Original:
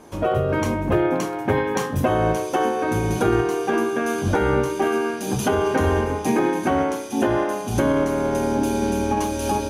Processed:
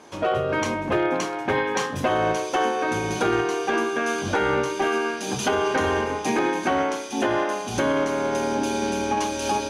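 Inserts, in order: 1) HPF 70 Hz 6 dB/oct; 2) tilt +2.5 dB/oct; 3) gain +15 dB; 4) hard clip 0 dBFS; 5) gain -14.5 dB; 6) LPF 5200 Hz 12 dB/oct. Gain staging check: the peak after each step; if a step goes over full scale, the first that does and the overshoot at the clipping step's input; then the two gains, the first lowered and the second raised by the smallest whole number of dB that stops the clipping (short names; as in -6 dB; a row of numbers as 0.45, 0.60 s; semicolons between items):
-6.5, -9.0, +6.0, 0.0, -14.5, -14.0 dBFS; step 3, 6.0 dB; step 3 +9 dB, step 5 -8.5 dB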